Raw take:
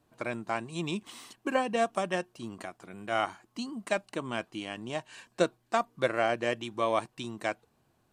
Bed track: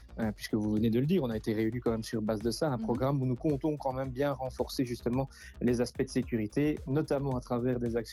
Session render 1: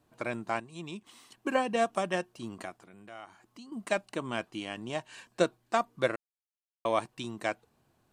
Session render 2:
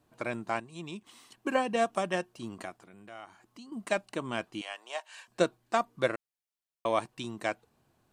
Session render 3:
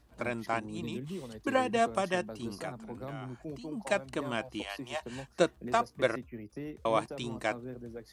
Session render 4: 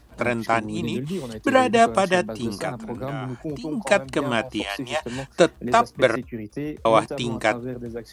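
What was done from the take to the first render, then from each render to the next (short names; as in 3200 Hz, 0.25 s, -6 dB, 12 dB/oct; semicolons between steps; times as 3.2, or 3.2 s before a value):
0.6–1.32 gain -8 dB; 2.75–3.72 compressor 2:1, threshold -56 dBFS; 6.16–6.85 mute
4.61–5.28 HPF 600 Hz 24 dB/oct
add bed track -12 dB
gain +11 dB; limiter -3 dBFS, peak gain reduction 2.5 dB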